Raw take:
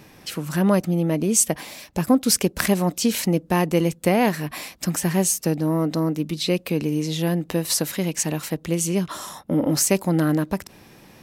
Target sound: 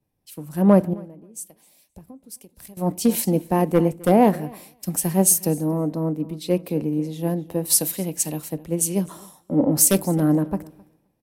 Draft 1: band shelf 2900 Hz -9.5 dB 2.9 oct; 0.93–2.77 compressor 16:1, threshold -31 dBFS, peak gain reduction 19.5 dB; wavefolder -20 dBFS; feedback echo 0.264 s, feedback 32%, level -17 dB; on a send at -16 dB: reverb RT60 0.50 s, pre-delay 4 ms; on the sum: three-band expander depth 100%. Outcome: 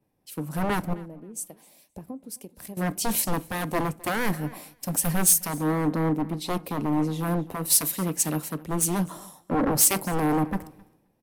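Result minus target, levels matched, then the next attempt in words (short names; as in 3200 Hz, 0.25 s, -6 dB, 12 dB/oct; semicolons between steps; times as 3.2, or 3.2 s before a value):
wavefolder: distortion +24 dB
band shelf 2900 Hz -9.5 dB 2.9 oct; 0.93–2.77 compressor 16:1, threshold -31 dBFS, peak gain reduction 19.5 dB; wavefolder -11.5 dBFS; feedback echo 0.264 s, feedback 32%, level -17 dB; on a send at -16 dB: reverb RT60 0.50 s, pre-delay 4 ms; on the sum: three-band expander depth 100%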